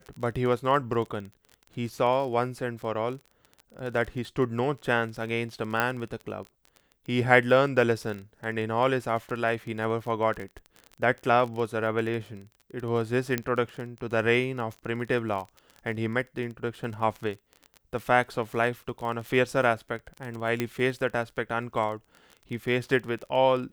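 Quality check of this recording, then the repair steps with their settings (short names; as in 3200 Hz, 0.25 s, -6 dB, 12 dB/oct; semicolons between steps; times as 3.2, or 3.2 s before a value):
crackle 22/s -33 dBFS
5.8 pop -11 dBFS
13.38 pop -13 dBFS
20.6 pop -13 dBFS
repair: de-click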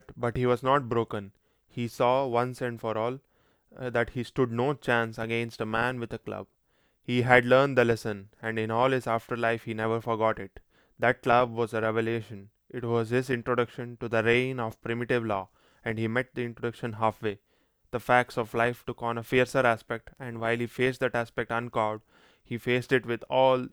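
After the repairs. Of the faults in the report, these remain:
none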